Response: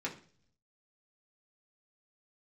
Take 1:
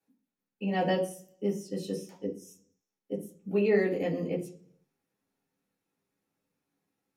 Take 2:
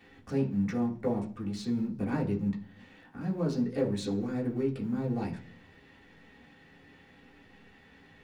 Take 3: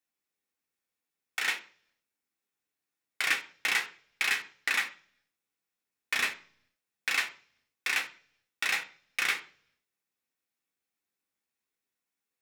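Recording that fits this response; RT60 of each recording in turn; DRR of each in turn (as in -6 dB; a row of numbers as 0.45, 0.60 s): 2; 0.45, 0.45, 0.45 s; -10.5, -4.0, 2.5 dB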